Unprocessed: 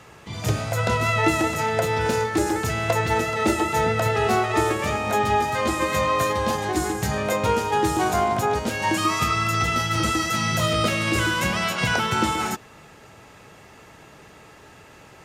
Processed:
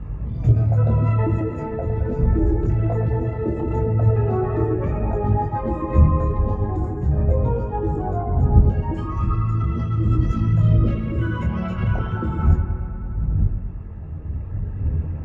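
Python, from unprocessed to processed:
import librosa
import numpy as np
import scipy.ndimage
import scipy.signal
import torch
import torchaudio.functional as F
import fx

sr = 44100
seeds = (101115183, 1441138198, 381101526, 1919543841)

p1 = fx.envelope_sharpen(x, sr, power=2.0)
p2 = fx.dmg_wind(p1, sr, seeds[0], corner_hz=98.0, level_db=-27.0)
p3 = scipy.signal.sosfilt(scipy.signal.butter(2, 54.0, 'highpass', fs=sr, output='sos'), p2)
p4 = fx.riaa(p3, sr, side='playback')
p5 = fx.rider(p4, sr, range_db=10, speed_s=2.0)
p6 = p5 + fx.echo_bbd(p5, sr, ms=108, stages=2048, feedback_pct=76, wet_db=-9, dry=0)
p7 = fx.detune_double(p6, sr, cents=13)
y = p7 * librosa.db_to_amplitude(-5.0)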